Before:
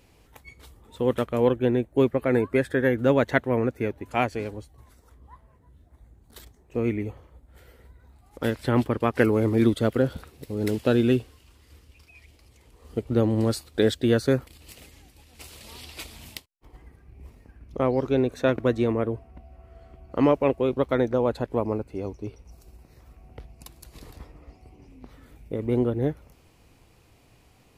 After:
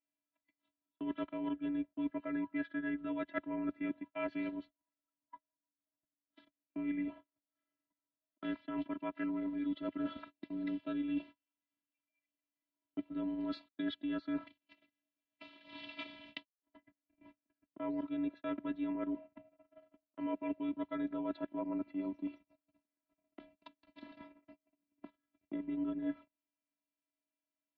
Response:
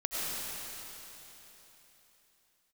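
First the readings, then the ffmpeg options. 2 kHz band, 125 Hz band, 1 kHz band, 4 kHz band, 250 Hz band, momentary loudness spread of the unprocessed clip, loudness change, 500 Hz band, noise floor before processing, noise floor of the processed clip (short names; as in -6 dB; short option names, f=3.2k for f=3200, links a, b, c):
-15.5 dB, -28.5 dB, -16.0 dB, -14.5 dB, -11.0 dB, 18 LU, -15.0 dB, -22.0 dB, -58 dBFS, under -85 dBFS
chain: -af "afftfilt=real='hypot(re,im)*cos(PI*b)':imag='0':win_size=512:overlap=0.75,areverse,acompressor=threshold=-34dB:ratio=20,areverse,agate=range=-34dB:threshold=-47dB:ratio=16:detection=peak,highpass=f=150:t=q:w=0.5412,highpass=f=150:t=q:w=1.307,lowpass=f=3.6k:t=q:w=0.5176,lowpass=f=3.6k:t=q:w=0.7071,lowpass=f=3.6k:t=q:w=1.932,afreqshift=-57,volume=1dB"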